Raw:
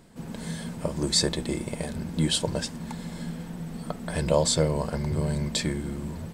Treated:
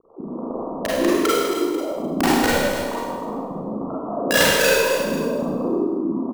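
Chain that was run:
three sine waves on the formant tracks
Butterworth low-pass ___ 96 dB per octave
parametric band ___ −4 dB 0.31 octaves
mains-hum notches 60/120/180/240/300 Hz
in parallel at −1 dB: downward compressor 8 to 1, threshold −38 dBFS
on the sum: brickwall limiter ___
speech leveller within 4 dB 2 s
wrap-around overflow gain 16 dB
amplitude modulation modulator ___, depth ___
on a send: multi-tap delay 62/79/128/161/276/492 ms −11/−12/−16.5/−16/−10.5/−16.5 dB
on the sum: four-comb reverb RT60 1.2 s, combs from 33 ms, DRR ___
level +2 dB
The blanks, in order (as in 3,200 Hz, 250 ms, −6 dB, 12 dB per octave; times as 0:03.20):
1,200 Hz, 850 Hz, −12.5 dBFS, 59 Hz, 80%, −7 dB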